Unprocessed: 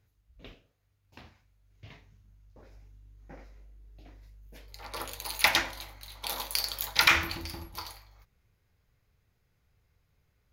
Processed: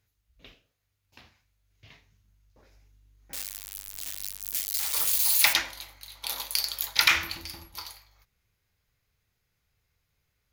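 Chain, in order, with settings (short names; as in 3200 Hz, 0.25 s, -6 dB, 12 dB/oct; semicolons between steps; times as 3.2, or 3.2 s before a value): 3.33–5.53 switching spikes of -21.5 dBFS; tilt shelf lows -5 dB, about 1500 Hz; gain -1.5 dB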